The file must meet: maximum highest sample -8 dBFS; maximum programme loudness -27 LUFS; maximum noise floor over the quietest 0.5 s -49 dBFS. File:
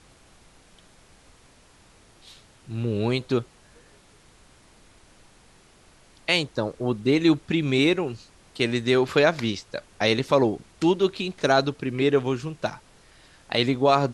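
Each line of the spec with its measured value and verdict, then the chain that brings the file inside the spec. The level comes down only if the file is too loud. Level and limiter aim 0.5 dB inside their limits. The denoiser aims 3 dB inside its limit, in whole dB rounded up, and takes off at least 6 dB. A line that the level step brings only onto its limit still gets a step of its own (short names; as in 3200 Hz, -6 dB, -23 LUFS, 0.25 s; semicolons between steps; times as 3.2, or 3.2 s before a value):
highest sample -6.0 dBFS: fail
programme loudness -24.0 LUFS: fail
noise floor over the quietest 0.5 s -55 dBFS: OK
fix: gain -3.5 dB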